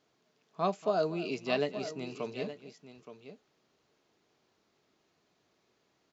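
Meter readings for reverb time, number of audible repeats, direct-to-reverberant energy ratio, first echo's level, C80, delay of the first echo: none, 2, none, -17.0 dB, none, 0.234 s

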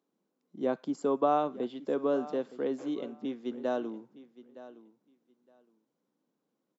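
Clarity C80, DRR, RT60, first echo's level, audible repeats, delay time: none, none, none, -17.0 dB, 2, 0.915 s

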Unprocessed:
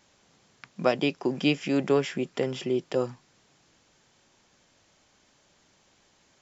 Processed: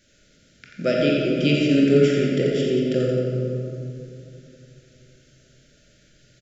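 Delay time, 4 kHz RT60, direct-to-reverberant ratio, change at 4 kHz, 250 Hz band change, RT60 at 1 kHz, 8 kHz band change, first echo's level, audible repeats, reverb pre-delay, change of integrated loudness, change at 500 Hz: 87 ms, 1.5 s, -3.5 dB, +5.5 dB, +8.5 dB, 2.6 s, n/a, -6.0 dB, 1, 21 ms, +7.0 dB, +7.5 dB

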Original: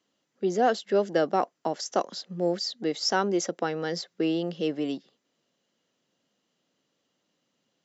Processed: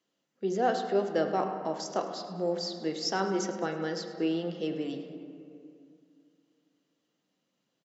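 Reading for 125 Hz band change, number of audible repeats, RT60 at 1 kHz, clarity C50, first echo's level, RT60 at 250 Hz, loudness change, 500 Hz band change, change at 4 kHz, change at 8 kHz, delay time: -2.5 dB, 1, 2.3 s, 6.0 dB, -15.5 dB, 2.8 s, -3.5 dB, -3.5 dB, -5.0 dB, n/a, 0.105 s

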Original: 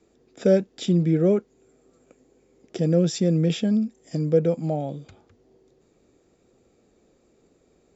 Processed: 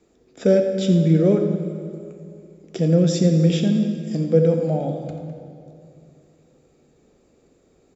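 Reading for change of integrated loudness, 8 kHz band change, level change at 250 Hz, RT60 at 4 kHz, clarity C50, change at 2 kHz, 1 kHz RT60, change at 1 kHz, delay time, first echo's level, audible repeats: +3.5 dB, n/a, +4.0 dB, 1.8 s, 5.5 dB, +2.5 dB, 2.3 s, +2.5 dB, 87 ms, -12.0 dB, 1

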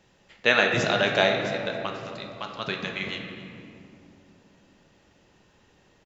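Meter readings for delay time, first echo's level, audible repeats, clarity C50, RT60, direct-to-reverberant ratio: 0.269 s, -17.0 dB, 1, 4.5 dB, 2.8 s, 2.0 dB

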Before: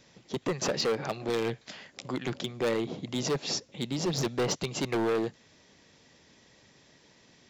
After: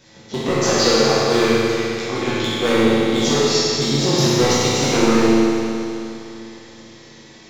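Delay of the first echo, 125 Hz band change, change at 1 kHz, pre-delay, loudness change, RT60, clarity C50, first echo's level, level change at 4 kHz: none, +13.5 dB, +15.0 dB, 11 ms, +14.0 dB, 2.9 s, -5.0 dB, none, +15.5 dB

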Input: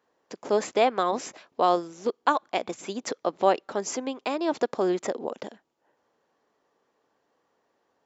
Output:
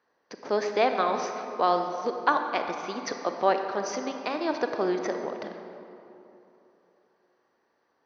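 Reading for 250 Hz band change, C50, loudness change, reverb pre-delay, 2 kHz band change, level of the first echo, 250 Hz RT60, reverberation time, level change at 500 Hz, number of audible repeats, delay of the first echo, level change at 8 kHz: -2.0 dB, 5.5 dB, -1.0 dB, 29 ms, +2.5 dB, none, 3.1 s, 3.0 s, -1.5 dB, none, none, n/a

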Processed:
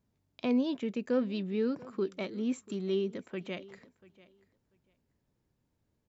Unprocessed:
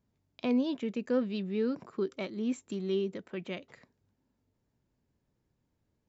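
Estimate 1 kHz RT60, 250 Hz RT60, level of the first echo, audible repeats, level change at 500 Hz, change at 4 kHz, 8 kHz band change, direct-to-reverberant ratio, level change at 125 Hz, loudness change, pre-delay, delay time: none, none, -21.0 dB, 1, 0.0 dB, 0.0 dB, n/a, none, 0.0 dB, 0.0 dB, none, 0.689 s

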